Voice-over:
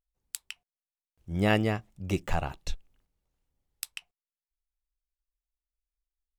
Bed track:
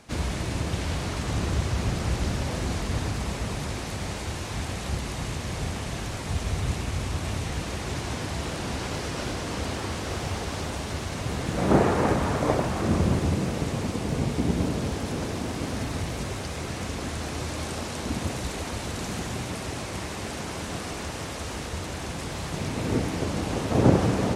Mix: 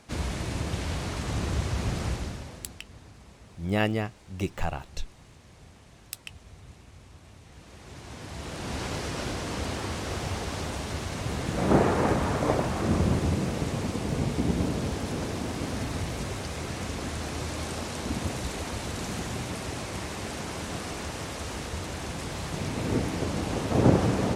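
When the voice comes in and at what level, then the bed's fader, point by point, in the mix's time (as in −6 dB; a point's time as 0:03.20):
2.30 s, −1.0 dB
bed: 0:02.06 −2.5 dB
0:02.83 −21 dB
0:07.42 −21 dB
0:08.80 −1.5 dB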